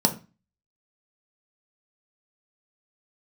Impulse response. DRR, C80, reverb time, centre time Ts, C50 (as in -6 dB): 3.5 dB, 20.0 dB, 0.30 s, 9 ms, 14.0 dB